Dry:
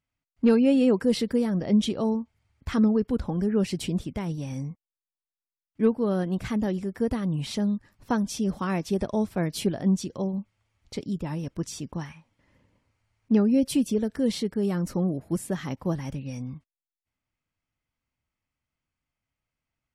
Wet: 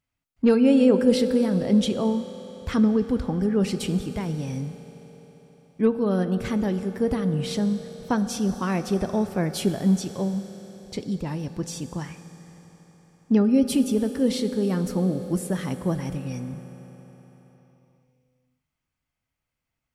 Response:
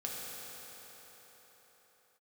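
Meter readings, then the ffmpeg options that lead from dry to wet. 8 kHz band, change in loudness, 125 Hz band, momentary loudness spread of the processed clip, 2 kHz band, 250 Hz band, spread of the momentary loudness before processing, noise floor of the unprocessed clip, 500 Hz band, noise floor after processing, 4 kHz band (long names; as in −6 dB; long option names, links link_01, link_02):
+3.0 dB, +2.5 dB, +2.5 dB, 14 LU, +2.5 dB, +2.5 dB, 13 LU, below −85 dBFS, +3.0 dB, −84 dBFS, +2.5 dB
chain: -filter_complex "[0:a]asplit=2[link_01][link_02];[1:a]atrim=start_sample=2205,highshelf=frequency=8400:gain=5[link_03];[link_02][link_03]afir=irnorm=-1:irlink=0,volume=-9dB[link_04];[link_01][link_04]amix=inputs=2:normalize=0"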